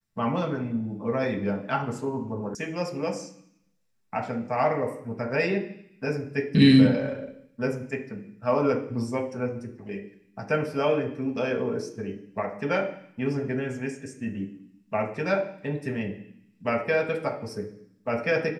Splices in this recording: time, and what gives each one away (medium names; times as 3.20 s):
2.55 s: sound stops dead